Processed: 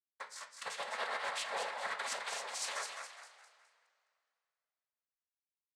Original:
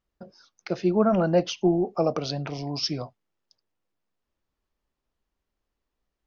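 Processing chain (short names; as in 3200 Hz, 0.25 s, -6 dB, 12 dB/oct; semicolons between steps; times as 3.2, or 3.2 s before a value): minimum comb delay 1.2 ms; HPF 1000 Hz 24 dB/oct; expander -59 dBFS; comb 4.4 ms, depth 93%; reverse; compressor 4:1, threshold -46 dBFS, peak gain reduction 19 dB; reverse; sample leveller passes 2; noise vocoder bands 6; frequency-shifting echo 0.227 s, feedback 38%, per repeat +60 Hz, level -5.5 dB; reverb, pre-delay 3 ms, DRR 5 dB; speed mistake 44.1 kHz file played as 48 kHz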